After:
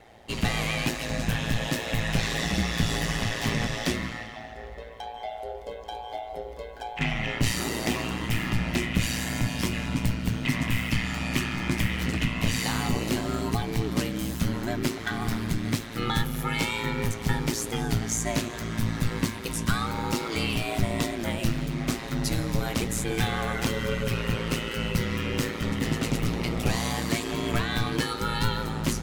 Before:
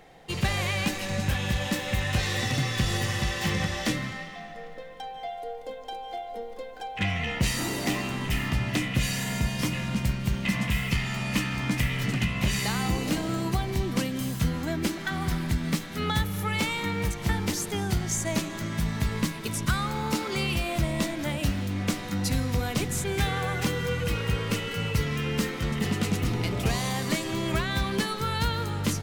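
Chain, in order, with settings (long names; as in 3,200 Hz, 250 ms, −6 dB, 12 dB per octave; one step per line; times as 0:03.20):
ring modulation 57 Hz
flanger 0.95 Hz, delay 6.4 ms, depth 9.4 ms, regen −70%
level +7.5 dB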